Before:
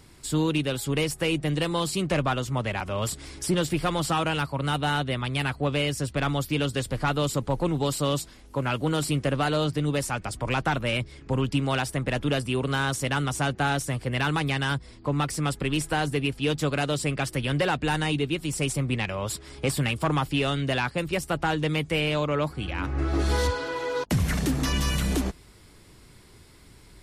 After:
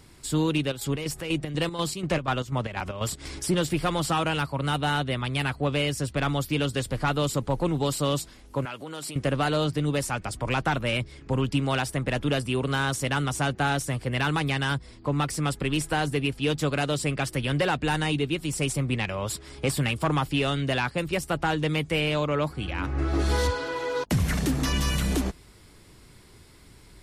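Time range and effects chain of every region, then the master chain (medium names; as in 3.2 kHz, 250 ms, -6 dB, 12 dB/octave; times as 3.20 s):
0.57–3.40 s: peaking EQ 10 kHz -4.5 dB 0.31 oct + square tremolo 4.1 Hz, depth 65%, duty 60% + upward compressor, threshold -29 dBFS
8.65–9.16 s: compression 10:1, threshold -29 dBFS + high-pass 420 Hz 6 dB/octave
whole clip: none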